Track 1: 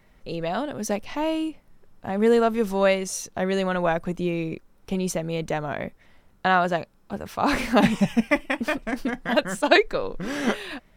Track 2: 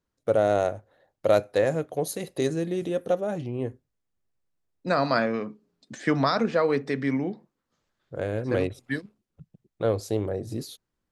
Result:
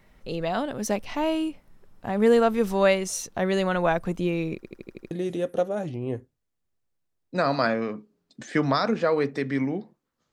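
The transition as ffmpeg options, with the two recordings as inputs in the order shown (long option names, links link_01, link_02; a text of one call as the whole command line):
ffmpeg -i cue0.wav -i cue1.wav -filter_complex "[0:a]apad=whole_dur=10.32,atrim=end=10.32,asplit=7[link_01][link_02][link_03][link_04][link_05][link_06][link_07];[link_01]atrim=end=4.632[link_08];[link_02]atrim=start=4.548:end=4.632[link_09];[link_03]atrim=start=4.548:end=4.632[link_10];[link_04]atrim=start=4.548:end=4.632[link_11];[link_05]atrim=start=4.548:end=4.632[link_12];[link_06]atrim=start=4.548:end=4.632[link_13];[link_07]atrim=start=4.548:end=4.632[link_14];[1:a]atrim=start=2.628:end=7.84[link_15];[link_08][link_09]acrossfade=duration=0.004:curve1=hsin:curve2=hsin[link_16];[link_16][link_10]acrossfade=duration=0.004:curve1=hsin:curve2=hsin[link_17];[link_17][link_11]acrossfade=duration=0.004:curve1=hsin:curve2=hsin[link_18];[link_18][link_12]acrossfade=duration=0.004:curve1=hsin:curve2=hsin[link_19];[link_19][link_13]acrossfade=duration=0.004:curve1=hsin:curve2=hsin[link_20];[link_20][link_14]acrossfade=duration=0.004:curve1=hsin:curve2=hsin[link_21];[link_21][link_15]acrossfade=duration=0.004:curve1=hsin:curve2=hsin" out.wav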